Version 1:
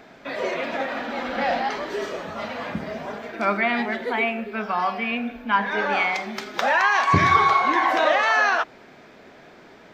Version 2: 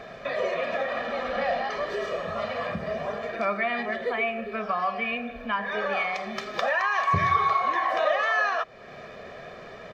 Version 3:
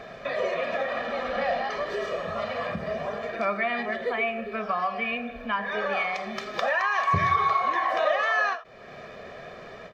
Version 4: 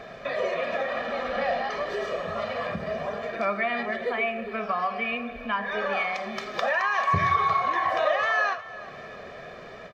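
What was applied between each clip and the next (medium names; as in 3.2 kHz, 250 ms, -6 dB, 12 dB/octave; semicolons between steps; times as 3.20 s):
compression 2:1, threshold -38 dBFS, peak gain reduction 14 dB; treble shelf 6.2 kHz -11 dB; comb 1.7 ms, depth 71%; trim +4.5 dB
endings held to a fixed fall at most 190 dB/s
feedback delay 359 ms, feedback 47%, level -17.5 dB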